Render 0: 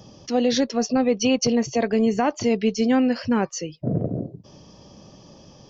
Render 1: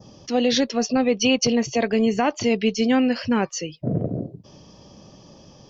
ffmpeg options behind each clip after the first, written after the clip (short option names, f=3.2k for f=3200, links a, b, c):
-af "adynamicequalizer=threshold=0.00631:dfrequency=2900:dqfactor=1.1:tfrequency=2900:tqfactor=1.1:attack=5:release=100:ratio=0.375:range=3:mode=boostabove:tftype=bell"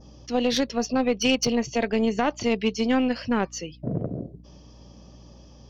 -af "aeval=exprs='val(0)+0.00708*(sin(2*PI*60*n/s)+sin(2*PI*2*60*n/s)/2+sin(2*PI*3*60*n/s)/3+sin(2*PI*4*60*n/s)/4+sin(2*PI*5*60*n/s)/5)':c=same,aeval=exprs='0.447*(cos(1*acos(clip(val(0)/0.447,-1,1)))-cos(1*PI/2))+0.0708*(cos(3*acos(clip(val(0)/0.447,-1,1)))-cos(3*PI/2))+0.00891*(cos(4*acos(clip(val(0)/0.447,-1,1)))-cos(4*PI/2))+0.00316*(cos(5*acos(clip(val(0)/0.447,-1,1)))-cos(5*PI/2))':c=same"